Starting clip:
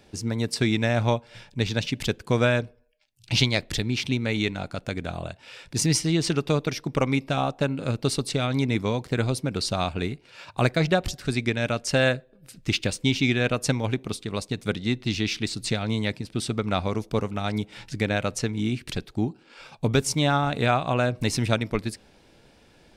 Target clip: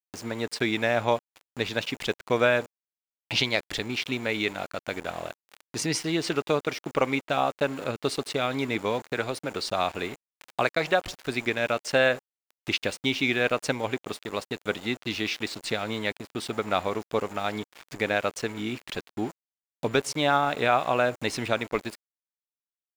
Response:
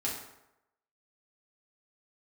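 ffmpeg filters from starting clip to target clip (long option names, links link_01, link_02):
-filter_complex "[0:a]asettb=1/sr,asplit=3[link_01][link_02][link_03];[link_01]atrim=end=8.994[link_04];[link_02]atrim=start=8.99:end=11.01,asetpts=PTS-STARTPTS,afade=type=in:duration=0.004:curve=qsin,afade=type=out:start_time=2.016:duration=0.004:curve=qsin,acrossover=split=500|3000[link_05][link_06][link_07];[link_05]acompressor=threshold=-25dB:ratio=6[link_08];[link_08][link_06][link_07]amix=inputs=3:normalize=0[link_09];[link_03]atrim=start=11.006[link_10];[link_04][link_09]acrossfade=duration=0.004:curve1=hsin:curve2=qsin[link_11];[link_11][link_10]acrossfade=duration=0.004:curve1=qsin:curve2=hsin,aeval=exprs='val(0)+0.002*sin(2*PI*7100*n/s)':channel_layout=same,agate=range=-33dB:threshold=-41dB:ratio=3:detection=peak,aeval=exprs='val(0)*gte(abs(val(0)),0.0158)':channel_layout=same,acompressor=mode=upward:threshold=-34dB:ratio=2.5,bass=frequency=250:gain=-15,treble=frequency=4000:gain=-9,alimiter=level_in=9dB:limit=-1dB:release=50:level=0:latency=1,volume=-7dB"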